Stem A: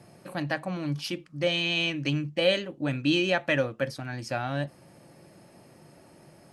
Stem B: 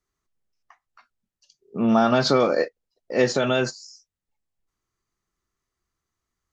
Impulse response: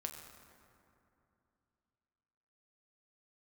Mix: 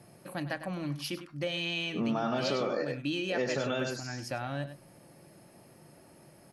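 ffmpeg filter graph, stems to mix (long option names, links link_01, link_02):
-filter_complex "[0:a]volume=-3dB,asplit=2[link_01][link_02];[link_02]volume=-13.5dB[link_03];[1:a]adelay=200,volume=-2dB,asplit=2[link_04][link_05];[link_05]volume=-5.5dB[link_06];[link_03][link_06]amix=inputs=2:normalize=0,aecho=0:1:100:1[link_07];[link_01][link_04][link_07]amix=inputs=3:normalize=0,equalizer=frequency=11000:width_type=o:width=0.22:gain=9.5,acompressor=threshold=-31dB:ratio=3"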